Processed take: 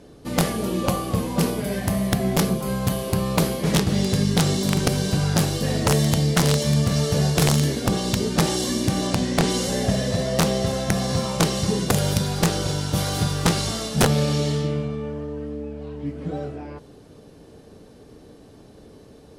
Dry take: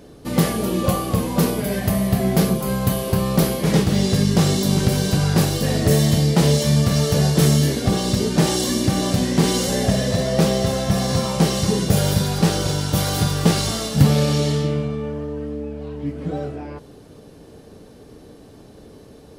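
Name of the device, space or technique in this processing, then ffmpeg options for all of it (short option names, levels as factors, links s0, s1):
overflowing digital effects unit: -filter_complex "[0:a]asettb=1/sr,asplit=3[s0][s1][s2];[s0]atrim=end=9.074[s3];[s1]atrim=start=9.07:end=9.5,asetpts=PTS-STARTPTS,afade=t=in:d=0.004:c=qsin,afade=t=out:st=0.426:d=0.004:c=qsin,lowpass=9400[s4];[s2]atrim=start=9.496[s5];[s3][s4]acrossfade=d=0.004:c1=hsin:c2=qsin[s6];[s6][s5]acrossfade=d=0.004:c1=qsin:c2=hsin,aeval=exprs='(mod(2.24*val(0)+1,2)-1)/2.24':c=same,lowpass=12000,volume=0.708"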